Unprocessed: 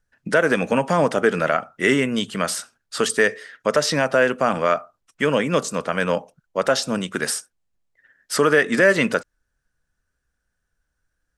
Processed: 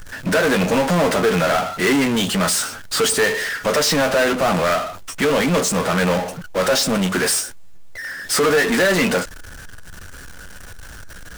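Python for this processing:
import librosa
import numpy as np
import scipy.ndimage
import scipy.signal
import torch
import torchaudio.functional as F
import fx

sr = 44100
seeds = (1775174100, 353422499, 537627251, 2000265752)

y = fx.room_early_taps(x, sr, ms=(11, 22), db=(-7.5, -12.5))
y = fx.power_curve(y, sr, exponent=0.35)
y = y * librosa.db_to_amplitude(-7.5)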